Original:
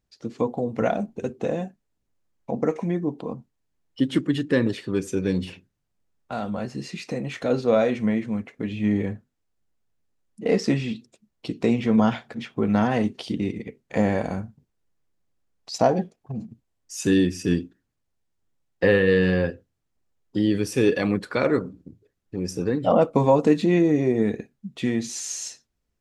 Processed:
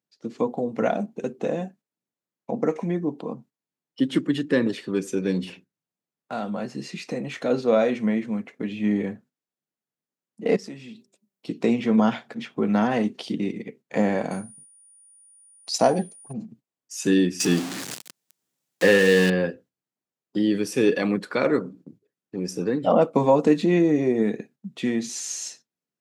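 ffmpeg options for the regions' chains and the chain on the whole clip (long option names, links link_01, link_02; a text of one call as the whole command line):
ffmpeg -i in.wav -filter_complex "[0:a]asettb=1/sr,asplit=3[link_01][link_02][link_03];[link_01]atrim=end=10.564[link_04];[link_02]atrim=start=10.56:end=11.48,asetpts=PTS-STARTPTS,afade=type=in:duration=0.004:curve=qsin,afade=type=out:start_time=0.916:duration=0.004:curve=qsin,highshelf=frequency=9100:gain=11.5,bandreject=frequency=194.9:width_type=h:width=4,bandreject=frequency=389.8:width_type=h:width=4,bandreject=frequency=584.7:width_type=h:width=4,bandreject=frequency=779.6:width_type=h:width=4,bandreject=frequency=974.5:width_type=h:width=4,acompressor=threshold=-47dB:ratio=2:attack=3.2:release=140:knee=1:detection=peak[link_05];[link_03]atrim=start=11.476[link_06];[link_04][link_05]acrossfade=duration=0.004:curve1=hsin:curve2=qsin[link_07];[link_07][link_06]acrossfade=duration=0.004:curve1=qsin:curve2=hsin,asettb=1/sr,asplit=3[link_08][link_09][link_10];[link_08]atrim=end=14.314[link_11];[link_09]atrim=start=14.31:end=16.33,asetpts=PTS-STARTPTS,afade=type=in:duration=0.004:curve=qsin,afade=type=out:start_time=2.016:duration=0.004:curve=qsin,aeval=exprs='val(0)+0.00224*sin(2*PI*9500*n/s)':channel_layout=same,highshelf=frequency=3500:gain=8.5[link_12];[link_10]atrim=start=16.326[link_13];[link_11][link_12]acrossfade=duration=0.004:curve1=hsin:curve2=qsin[link_14];[link_14][link_13]acrossfade=duration=0.004:curve1=qsin:curve2=hsin,asettb=1/sr,asplit=3[link_15][link_16][link_17];[link_15]atrim=end=17.404[link_18];[link_16]atrim=start=17.4:end=19.3,asetpts=PTS-STARTPTS,afade=type=in:duration=0.004:curve=qsin,afade=type=out:start_time=1.896:duration=0.004:curve=qsin,aeval=exprs='val(0)+0.5*0.0398*sgn(val(0))':channel_layout=same,acrossover=split=9900[link_19][link_20];[link_20]acompressor=threshold=-54dB:ratio=4:attack=1:release=60[link_21];[link_19][link_21]amix=inputs=2:normalize=0,highshelf=frequency=3200:gain=11.5[link_22];[link_17]atrim=start=19.296[link_23];[link_18][link_22]acrossfade=duration=0.004:curve1=hsin:curve2=qsin[link_24];[link_24][link_23]acrossfade=duration=0.004:curve1=qsin:curve2=hsin,agate=range=-8dB:threshold=-48dB:ratio=16:detection=peak,highpass=frequency=150:width=0.5412,highpass=frequency=150:width=1.3066" out.wav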